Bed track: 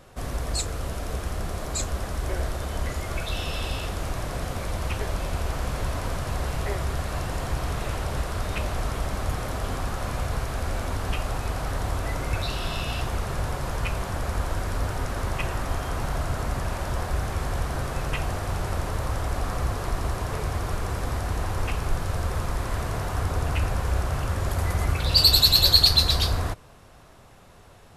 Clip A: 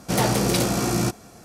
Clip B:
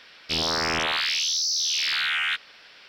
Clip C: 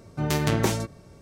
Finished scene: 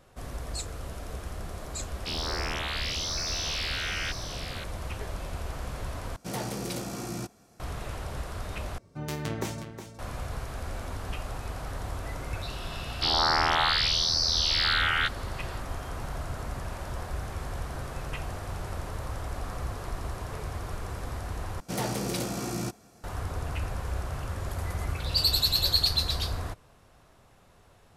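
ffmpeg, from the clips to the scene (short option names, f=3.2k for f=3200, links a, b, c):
-filter_complex "[2:a]asplit=2[a][b];[1:a]asplit=2[c][d];[0:a]volume=-7.5dB[e];[a]aecho=1:1:828:0.398[f];[3:a]aecho=1:1:364:0.316[g];[b]highpass=320,equalizer=f=480:t=q:w=4:g=-8,equalizer=f=830:t=q:w=4:g=9,equalizer=f=1.3k:t=q:w=4:g=6,equalizer=f=2.5k:t=q:w=4:g=-9,equalizer=f=4.5k:t=q:w=4:g=5,lowpass=f=5k:w=0.5412,lowpass=f=5k:w=1.3066[h];[e]asplit=4[i][j][k][l];[i]atrim=end=6.164[m];[c]atrim=end=1.44,asetpts=PTS-STARTPTS,volume=-13dB[n];[j]atrim=start=7.596:end=8.784[o];[g]atrim=end=1.21,asetpts=PTS-STARTPTS,volume=-9.5dB[p];[k]atrim=start=9.986:end=21.604[q];[d]atrim=end=1.44,asetpts=PTS-STARTPTS,volume=-10dB[r];[l]atrim=start=23.036[s];[f]atrim=end=2.88,asetpts=PTS-STARTPTS,volume=-8.5dB,afade=t=in:d=0.004:c=hsin,afade=t=out:st=2.876:d=0.004:c=hsin,adelay=1760[t];[h]atrim=end=2.88,asetpts=PTS-STARTPTS,volume=-0.5dB,afade=t=in:d=0.004:c=hsin,afade=t=out:st=2.876:d=0.004:c=hsin,adelay=12720[u];[m][n]acrossfade=d=0.004:c1=hsin:c2=hsin[v];[v][o]acrossfade=d=0.004:c1=hsin:c2=hsin[w];[w][p]acrossfade=d=0.004:c1=hsin:c2=hsin[x];[x][q]acrossfade=d=0.004:c1=hsin:c2=hsin[y];[y][r]acrossfade=d=0.004:c1=hsin:c2=hsin[z];[z][s]acrossfade=d=0.004:c1=hsin:c2=hsin[aa];[aa][t][u]amix=inputs=3:normalize=0"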